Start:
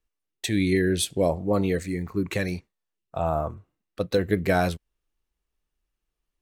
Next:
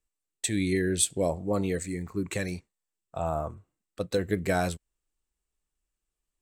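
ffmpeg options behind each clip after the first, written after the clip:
-af "equalizer=f=7.9k:t=o:w=0.43:g=13,volume=-4.5dB"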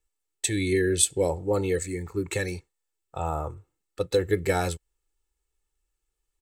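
-af "aecho=1:1:2.3:0.65,volume=1.5dB"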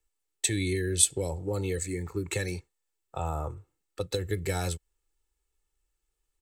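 -filter_complex "[0:a]acrossover=split=160|3000[a][b][c];[b]acompressor=threshold=-30dB:ratio=6[d];[a][d][c]amix=inputs=3:normalize=0"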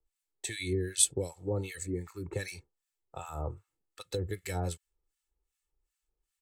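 -filter_complex "[0:a]acrossover=split=1100[a][b];[a]aeval=exprs='val(0)*(1-1/2+1/2*cos(2*PI*2.6*n/s))':c=same[c];[b]aeval=exprs='val(0)*(1-1/2-1/2*cos(2*PI*2.6*n/s))':c=same[d];[c][d]amix=inputs=2:normalize=0"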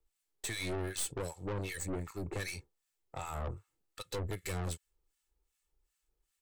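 -af "aeval=exprs='(tanh(89.1*val(0)+0.5)-tanh(0.5))/89.1':c=same,volume=5dB"

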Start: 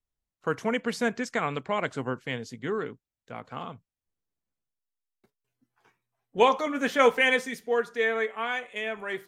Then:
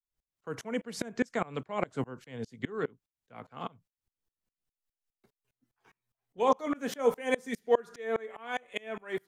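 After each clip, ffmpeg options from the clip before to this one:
-filter_complex "[0:a]acrossover=split=210|1000|5800[a][b][c][d];[c]acompressor=threshold=-37dB:ratio=6[e];[a][b][e][d]amix=inputs=4:normalize=0,aeval=exprs='val(0)*pow(10,-29*if(lt(mod(-4.9*n/s,1),2*abs(-4.9)/1000),1-mod(-4.9*n/s,1)/(2*abs(-4.9)/1000),(mod(-4.9*n/s,1)-2*abs(-4.9)/1000)/(1-2*abs(-4.9)/1000))/20)':c=same,volume=6dB"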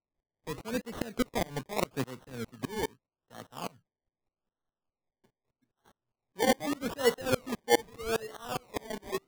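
-af "acrusher=samples=26:mix=1:aa=0.000001:lfo=1:lforange=15.6:lforate=0.81"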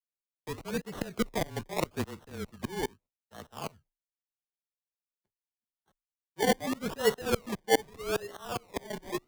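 -af "agate=range=-33dB:threshold=-53dB:ratio=3:detection=peak,afreqshift=-26"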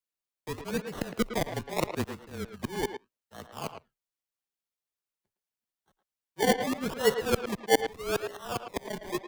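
-filter_complex "[0:a]asplit=2[a][b];[b]adelay=110,highpass=300,lowpass=3.4k,asoftclip=type=hard:threshold=-18dB,volume=-8dB[c];[a][c]amix=inputs=2:normalize=0,volume=1.5dB"

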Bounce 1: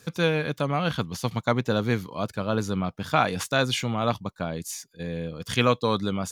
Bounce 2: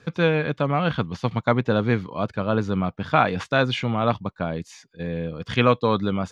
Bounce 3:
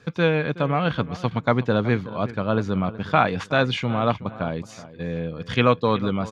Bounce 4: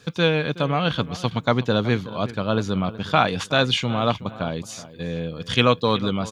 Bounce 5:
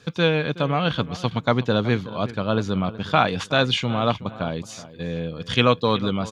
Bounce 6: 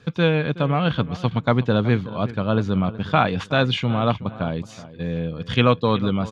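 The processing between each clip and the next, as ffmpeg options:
-af "lowpass=2.9k,volume=3.5dB"
-filter_complex "[0:a]asplit=2[a][b];[b]adelay=372,lowpass=f=3.1k:p=1,volume=-16dB,asplit=2[c][d];[d]adelay=372,lowpass=f=3.1k:p=1,volume=0.32,asplit=2[e][f];[f]adelay=372,lowpass=f=3.1k:p=1,volume=0.32[g];[a][c][e][g]amix=inputs=4:normalize=0"
-af "aexciter=amount=2.8:drive=4.9:freq=2.9k"
-af "highshelf=f=9k:g=-9"
-af "bass=f=250:g=4,treble=f=4k:g=-9"

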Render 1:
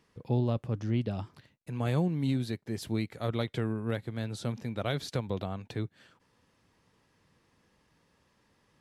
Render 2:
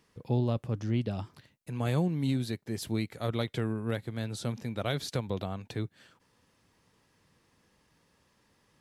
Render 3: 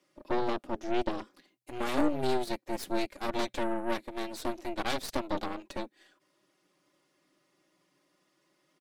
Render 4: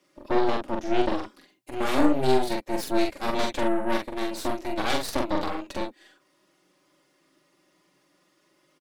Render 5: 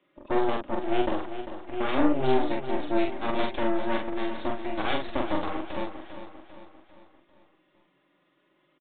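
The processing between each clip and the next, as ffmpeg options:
-af "highshelf=f=5.4k:g=5.5"
-af "aecho=1:1:4.5:0.97,afreqshift=120,aeval=exprs='0.158*(cos(1*acos(clip(val(0)/0.158,-1,1)))-cos(1*PI/2))+0.0282*(cos(3*acos(clip(val(0)/0.158,-1,1)))-cos(3*PI/2))+0.0316*(cos(4*acos(clip(val(0)/0.158,-1,1)))-cos(4*PI/2))+0.00708*(cos(8*acos(clip(val(0)/0.158,-1,1)))-cos(8*PI/2))':c=same"
-filter_complex "[0:a]asplit=2[a][b];[b]adelay=44,volume=-3dB[c];[a][c]amix=inputs=2:normalize=0,volume=4.5dB"
-filter_complex "[0:a]asplit=2[a][b];[b]aecho=0:1:397|794|1191|1588|1985:0.282|0.138|0.0677|0.0332|0.0162[c];[a][c]amix=inputs=2:normalize=0,aresample=8000,aresample=44100,volume=-2dB"

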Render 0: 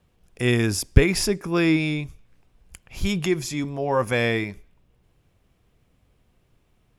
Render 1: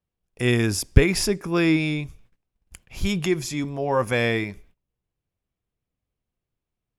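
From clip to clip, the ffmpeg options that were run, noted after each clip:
-af "agate=range=-21dB:threshold=-51dB:ratio=16:detection=peak"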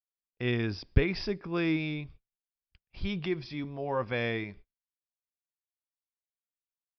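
-af "agate=range=-28dB:threshold=-41dB:ratio=16:detection=peak,aresample=11025,aresample=44100,volume=-9dB"

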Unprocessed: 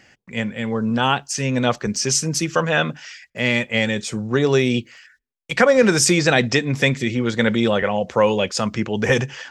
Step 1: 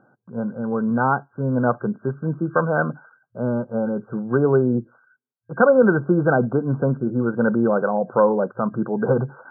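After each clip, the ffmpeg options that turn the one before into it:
-af "afftfilt=real='re*between(b*sr/4096,110,1600)':imag='im*between(b*sr/4096,110,1600)':win_size=4096:overlap=0.75"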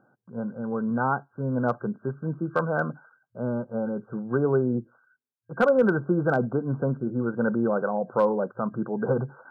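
-af "asoftclip=type=hard:threshold=-6.5dB,volume=-5.5dB"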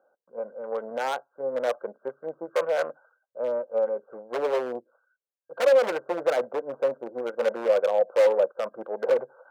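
-af "aeval=exprs='0.266*(cos(1*acos(clip(val(0)/0.266,-1,1)))-cos(1*PI/2))+0.00376*(cos(6*acos(clip(val(0)/0.266,-1,1)))-cos(6*PI/2))+0.0188*(cos(7*acos(clip(val(0)/0.266,-1,1)))-cos(7*PI/2))':c=same,aeval=exprs='0.112*(abs(mod(val(0)/0.112+3,4)-2)-1)':c=same,highpass=f=540:t=q:w=4.9,volume=-3dB"

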